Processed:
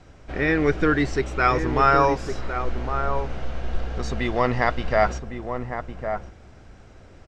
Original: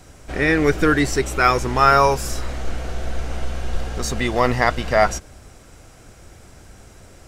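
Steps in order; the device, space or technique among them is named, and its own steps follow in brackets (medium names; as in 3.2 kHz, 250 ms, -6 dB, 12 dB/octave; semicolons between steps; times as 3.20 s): shout across a valley (distance through air 150 m; echo from a far wall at 190 m, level -7 dB); trim -3 dB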